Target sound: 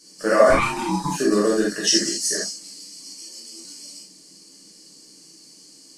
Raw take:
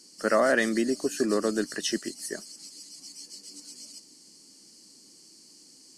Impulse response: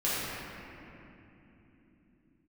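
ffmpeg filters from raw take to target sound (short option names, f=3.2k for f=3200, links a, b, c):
-filter_complex "[0:a]asettb=1/sr,asplit=3[a][b][c];[a]atrim=end=0.504[d];[b]atrim=start=0.5:end=1.12,asetpts=PTS-STARTPTS,afade=t=in:d=0.004:c=qsin,afade=t=out:st=0.616:d=0.004:c=qsin,aeval=exprs='val(0)*sin(2*PI*580*n/s)':c=same[e];[c]atrim=start=1.116[f];[d][e]acrossfade=d=0.004:c1=hsin:c2=qsin[g];[g][f]acrossfade=d=0.004:c1=qsin:c2=hsin,asettb=1/sr,asplit=3[h][i][j];[h]atrim=end=1.874[k];[i]atrim=start=1.87:end=2.5,asetpts=PTS-STARTPTS,afade=t=in:d=0.004:c=qsin,afade=t=out:st=0.626:d=0.004:c=qsin,equalizer=f=6.1k:w=1.1:g=13.5[l];[j]atrim=start=2.496[m];[k][l]acrossfade=d=0.004:c1=hsin:c2=qsin[n];[n][m]acrossfade=d=0.004:c1=qsin:c2=hsin[o];[1:a]atrim=start_sample=2205,afade=t=out:st=0.14:d=0.01,atrim=end_sample=6615[p];[o][p]afir=irnorm=-1:irlink=0,asettb=1/sr,asplit=3[q][r][s];[q]atrim=end=3.214[t];[r]atrim=start=3.21:end=3.65,asetpts=PTS-STARTPTS,afade=t=in:d=0.004:c=qsin,afade=t=out:st=0.436:d=0.004:c=qsin,afreqshift=41[u];[s]atrim=start=3.646[v];[t][u]acrossfade=d=0.004:c1=hsin:c2=qsin[w];[w][v]acrossfade=d=0.004:c1=qsin:c2=hsin"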